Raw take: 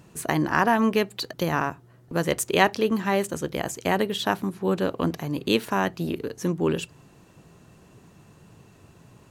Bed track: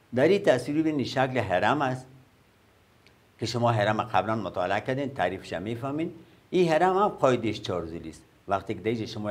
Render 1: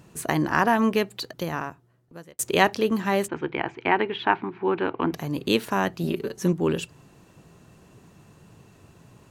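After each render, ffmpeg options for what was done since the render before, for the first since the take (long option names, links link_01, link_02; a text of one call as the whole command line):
ffmpeg -i in.wav -filter_complex "[0:a]asettb=1/sr,asplit=3[link_01][link_02][link_03];[link_01]atrim=end=3.284[link_04];[link_02]atrim=start=3.28:end=5.13,asetpts=PTS-STARTPTS,afade=type=in:duration=0.004:curve=qsin,afade=type=out:start_time=1.846:duration=0.004:curve=qsin,highpass=120,equalizer=frequency=190:width_type=q:width=4:gain=-9,equalizer=frequency=350:width_type=q:width=4:gain=5,equalizer=frequency=560:width_type=q:width=4:gain=-9,equalizer=frequency=890:width_type=q:width=4:gain=8,equalizer=frequency=1500:width_type=q:width=4:gain=4,equalizer=frequency=2300:width_type=q:width=4:gain=8,lowpass=frequency=3000:width=0.5412,lowpass=frequency=3000:width=1.3066[link_05];[link_03]atrim=start=5.126[link_06];[link_04][link_05]acrossfade=duration=0.004:curve1=hsin:curve2=qsin[link_07];[link_07][link_06]acrossfade=duration=0.004:curve1=qsin:curve2=hsin,asettb=1/sr,asplit=3[link_08][link_09][link_10];[link_08]atrim=end=6.034[link_11];[link_09]atrim=start=6.03:end=6.53,asetpts=PTS-STARTPTS,afade=type=in:duration=0.004:curve=qsin,afade=type=out:start_time=0.496:duration=0.004:curve=qsin,aecho=1:1:5.2:0.65,atrim=end_sample=22050[link_12];[link_10]atrim=start=6.526[link_13];[link_11][link_12]acrossfade=duration=0.004:curve1=hsin:curve2=qsin[link_14];[link_14][link_13]acrossfade=duration=0.004:curve1=qsin:curve2=hsin,asplit=2[link_15][link_16];[link_15]atrim=end=2.39,asetpts=PTS-STARTPTS,afade=type=out:start_time=0.89:duration=1.5[link_17];[link_16]atrim=start=2.39,asetpts=PTS-STARTPTS,afade=type=in:duration=0.004:curve=hsin[link_18];[link_17][link_18]concat=n=2:v=0:a=1" out.wav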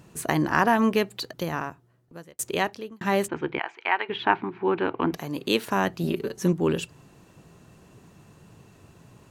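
ffmpeg -i in.wav -filter_complex "[0:a]asplit=3[link_01][link_02][link_03];[link_01]afade=type=out:start_time=3.58:duration=0.02[link_04];[link_02]highpass=810,afade=type=in:start_time=3.58:duration=0.02,afade=type=out:start_time=4.08:duration=0.02[link_05];[link_03]afade=type=in:start_time=4.08:duration=0.02[link_06];[link_04][link_05][link_06]amix=inputs=3:normalize=0,asettb=1/sr,asplit=3[link_07][link_08][link_09];[link_07]atrim=end=5.164[link_10];[link_08]atrim=start=5.16:end=5.68,asetpts=PTS-STARTPTS,afade=type=in:duration=0.004:curve=qsin,afade=type=out:start_time=0.516:duration=0.004:curve=qsin,highpass=frequency=250:poles=1[link_11];[link_09]atrim=start=5.676[link_12];[link_10][link_11]acrossfade=duration=0.004:curve1=hsin:curve2=qsin[link_13];[link_13][link_12]acrossfade=duration=0.004:curve1=qsin:curve2=hsin,asplit=2[link_14][link_15];[link_14]atrim=end=3.01,asetpts=PTS-STARTPTS,afade=type=out:start_time=2.19:duration=0.82[link_16];[link_15]atrim=start=3.01,asetpts=PTS-STARTPTS,afade=type=in:duration=0.004:curve=hsin[link_17];[link_16][link_17]concat=n=2:v=0:a=1" out.wav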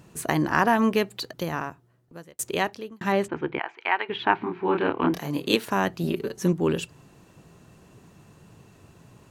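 ffmpeg -i in.wav -filter_complex "[0:a]asettb=1/sr,asplit=3[link_01][link_02][link_03];[link_01]atrim=end=3.124[link_04];[link_02]atrim=start=3.12:end=3.78,asetpts=PTS-STARTPTS,afade=type=in:duration=0.004:curve=qsin,afade=type=out:start_time=0.656:duration=0.004:curve=qsin,aemphasis=mode=reproduction:type=50fm[link_05];[link_03]atrim=start=3.776[link_06];[link_04][link_05]acrossfade=duration=0.004:curve1=hsin:curve2=qsin[link_07];[link_07][link_06]acrossfade=duration=0.004:curve1=qsin:curve2=hsin,asettb=1/sr,asplit=3[link_08][link_09][link_10];[link_08]atrim=end=4.384[link_11];[link_09]atrim=start=4.38:end=5.56,asetpts=PTS-STARTPTS,afade=type=in:duration=0.004:curve=qsin,afade=type=out:start_time=1.176:duration=0.004:curve=qsin,asplit=2[link_12][link_13];[link_13]adelay=28,volume=-2dB[link_14];[link_12][link_14]amix=inputs=2:normalize=0,atrim=end_sample=52038[link_15];[link_10]atrim=start=5.556[link_16];[link_11][link_15]acrossfade=duration=0.004:curve1=hsin:curve2=qsin[link_17];[link_17][link_16]acrossfade=duration=0.004:curve1=qsin:curve2=hsin" out.wav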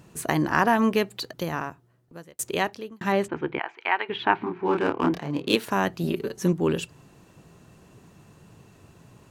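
ffmpeg -i in.wav -filter_complex "[0:a]asplit=3[link_01][link_02][link_03];[link_01]afade=type=out:start_time=4.45:duration=0.02[link_04];[link_02]adynamicsmooth=sensitivity=5:basefreq=2600,afade=type=in:start_time=4.45:duration=0.02,afade=type=out:start_time=5.55:duration=0.02[link_05];[link_03]afade=type=in:start_time=5.55:duration=0.02[link_06];[link_04][link_05][link_06]amix=inputs=3:normalize=0" out.wav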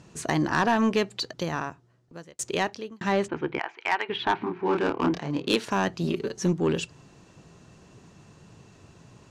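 ffmpeg -i in.wav -af "lowpass=frequency=6300:width_type=q:width=1.5,asoftclip=type=tanh:threshold=-14dB" out.wav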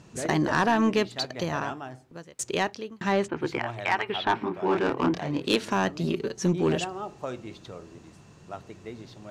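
ffmpeg -i in.wav -i bed.wav -filter_complex "[1:a]volume=-12.5dB[link_01];[0:a][link_01]amix=inputs=2:normalize=0" out.wav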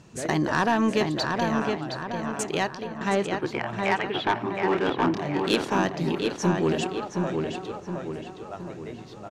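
ffmpeg -i in.wav -filter_complex "[0:a]asplit=2[link_01][link_02];[link_02]adelay=718,lowpass=frequency=3400:poles=1,volume=-4dB,asplit=2[link_03][link_04];[link_04]adelay=718,lowpass=frequency=3400:poles=1,volume=0.5,asplit=2[link_05][link_06];[link_06]adelay=718,lowpass=frequency=3400:poles=1,volume=0.5,asplit=2[link_07][link_08];[link_08]adelay=718,lowpass=frequency=3400:poles=1,volume=0.5,asplit=2[link_09][link_10];[link_10]adelay=718,lowpass=frequency=3400:poles=1,volume=0.5,asplit=2[link_11][link_12];[link_12]adelay=718,lowpass=frequency=3400:poles=1,volume=0.5[link_13];[link_01][link_03][link_05][link_07][link_09][link_11][link_13]amix=inputs=7:normalize=0" out.wav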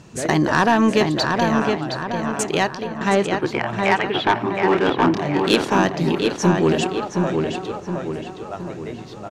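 ffmpeg -i in.wav -af "volume=6.5dB" out.wav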